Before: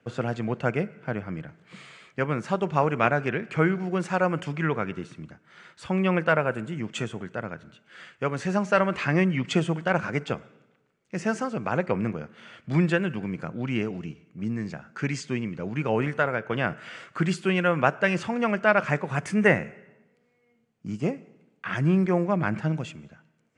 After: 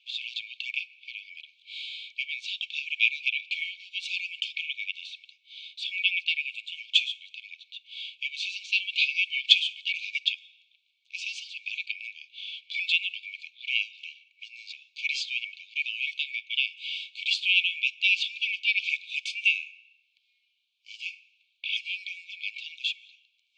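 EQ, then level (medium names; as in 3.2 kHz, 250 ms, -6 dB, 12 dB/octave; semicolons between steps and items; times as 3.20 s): brick-wall FIR high-pass 2.2 kHz; resonant low-pass 3.7 kHz, resonance Q 4.8; +5.5 dB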